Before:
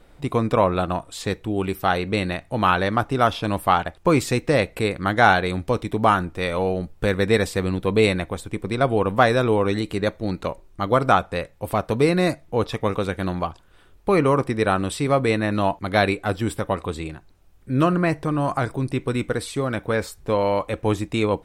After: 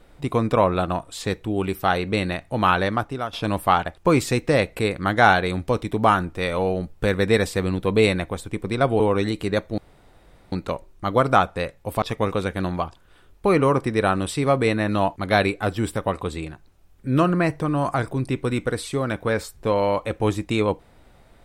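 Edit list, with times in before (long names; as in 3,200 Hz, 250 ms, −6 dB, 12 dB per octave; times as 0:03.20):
0:02.84–0:03.33: fade out linear, to −16.5 dB
0:09.00–0:09.50: remove
0:10.28: splice in room tone 0.74 s
0:11.78–0:12.65: remove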